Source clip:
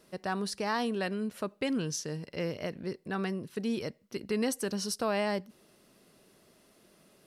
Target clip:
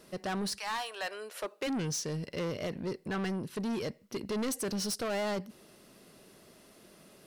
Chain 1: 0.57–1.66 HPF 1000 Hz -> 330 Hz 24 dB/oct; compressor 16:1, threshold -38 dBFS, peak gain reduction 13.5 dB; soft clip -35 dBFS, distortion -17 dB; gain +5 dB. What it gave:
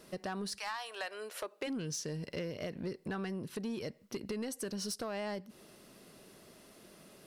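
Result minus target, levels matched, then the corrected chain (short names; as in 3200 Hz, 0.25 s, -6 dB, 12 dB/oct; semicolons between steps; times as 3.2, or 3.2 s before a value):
compressor: peak gain reduction +13.5 dB
0.57–1.66 HPF 1000 Hz -> 330 Hz 24 dB/oct; soft clip -35 dBFS, distortion -8 dB; gain +5 dB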